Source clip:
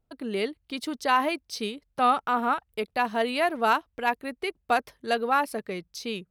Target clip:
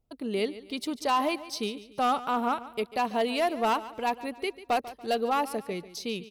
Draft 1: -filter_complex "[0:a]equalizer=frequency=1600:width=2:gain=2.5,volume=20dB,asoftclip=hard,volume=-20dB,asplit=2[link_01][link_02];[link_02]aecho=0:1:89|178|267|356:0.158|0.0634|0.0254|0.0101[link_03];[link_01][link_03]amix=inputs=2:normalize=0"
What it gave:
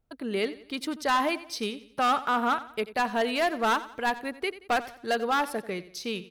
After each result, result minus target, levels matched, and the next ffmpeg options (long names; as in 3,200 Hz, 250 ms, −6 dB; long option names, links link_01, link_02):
echo 54 ms early; 2,000 Hz band +5.0 dB
-filter_complex "[0:a]equalizer=frequency=1600:width=2:gain=2.5,volume=20dB,asoftclip=hard,volume=-20dB,asplit=2[link_01][link_02];[link_02]aecho=0:1:143|286|429|572:0.158|0.0634|0.0254|0.0101[link_03];[link_01][link_03]amix=inputs=2:normalize=0"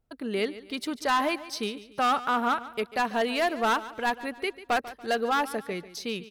2,000 Hz band +5.0 dB
-filter_complex "[0:a]equalizer=frequency=1600:width=2:gain=-8,volume=20dB,asoftclip=hard,volume=-20dB,asplit=2[link_01][link_02];[link_02]aecho=0:1:143|286|429|572:0.158|0.0634|0.0254|0.0101[link_03];[link_01][link_03]amix=inputs=2:normalize=0"